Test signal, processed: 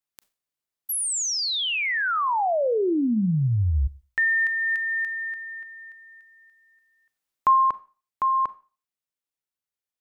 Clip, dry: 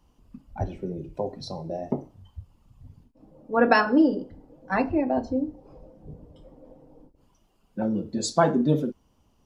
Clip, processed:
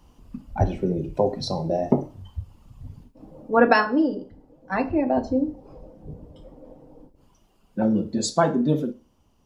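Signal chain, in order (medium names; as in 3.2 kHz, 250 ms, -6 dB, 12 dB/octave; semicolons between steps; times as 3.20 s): gain riding within 5 dB 0.5 s; Schroeder reverb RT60 0.35 s, combs from 29 ms, DRR 16.5 dB; trim +3 dB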